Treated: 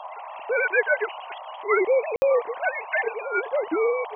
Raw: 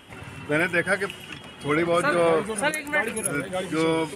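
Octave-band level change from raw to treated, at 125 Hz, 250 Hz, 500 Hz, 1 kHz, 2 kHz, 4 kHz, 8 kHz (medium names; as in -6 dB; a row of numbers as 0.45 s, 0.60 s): under -25 dB, -9.0 dB, +2.0 dB, -0.5 dB, 0.0 dB, under -10 dB, under -30 dB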